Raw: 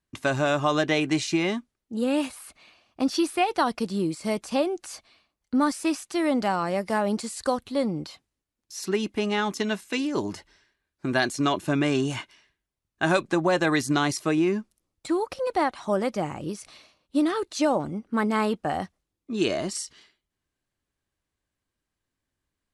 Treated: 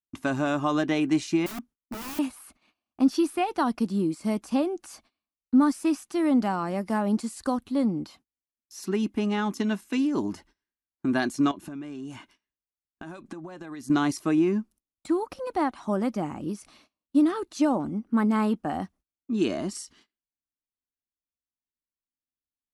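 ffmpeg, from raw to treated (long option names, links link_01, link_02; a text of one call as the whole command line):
ffmpeg -i in.wav -filter_complex "[0:a]asettb=1/sr,asplit=3[link_01][link_02][link_03];[link_01]atrim=end=1.464[link_04];[link_02]atrim=start=1.46:end=2.19,asetpts=PTS-STARTPTS,afade=type=in:duration=0.004:curve=qsin,afade=type=out:start_time=0.726:duration=0.004:curve=qsin,aeval=exprs='(mod(29.9*val(0)+1,2)-1)/29.9':channel_layout=same[link_05];[link_03]atrim=start=2.186[link_06];[link_04][link_05]acrossfade=duration=0.004:curve1=hsin:curve2=qsin[link_07];[link_07][link_06]acrossfade=duration=0.004:curve1=qsin:curve2=hsin,asettb=1/sr,asplit=3[link_08][link_09][link_10];[link_08]atrim=end=11.514[link_11];[link_09]atrim=start=11.51:end=13.9,asetpts=PTS-STARTPTS,afade=type=in:duration=0.004:curve=qsin,afade=type=out:start_time=2.386:duration=0.004:curve=qsin,acompressor=threshold=-34dB:ratio=20:attack=3.2:release=140:knee=1:detection=peak[link_12];[link_10]atrim=start=13.896[link_13];[link_11][link_12]acrossfade=duration=0.004:curve1=hsin:curve2=qsin[link_14];[link_14][link_13]acrossfade=duration=0.004:curve1=qsin:curve2=hsin,agate=range=-21dB:threshold=-52dB:ratio=16:detection=peak,equalizer=frequency=125:width_type=o:width=1:gain=-6,equalizer=frequency=250:width_type=o:width=1:gain=7,equalizer=frequency=500:width_type=o:width=1:gain=-7,equalizer=frequency=2000:width_type=o:width=1:gain=-5,equalizer=frequency=4000:width_type=o:width=1:gain=-6,equalizer=frequency=8000:width_type=o:width=1:gain=-5" out.wav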